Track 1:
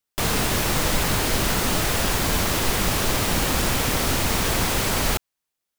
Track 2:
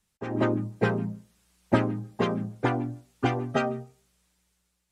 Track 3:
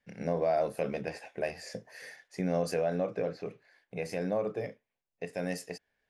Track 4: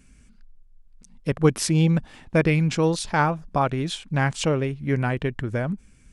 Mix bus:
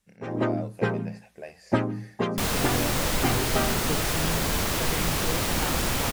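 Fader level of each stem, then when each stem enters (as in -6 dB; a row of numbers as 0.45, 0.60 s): -4.0, -1.0, -7.5, -14.5 dB; 2.20, 0.00, 0.00, 2.45 s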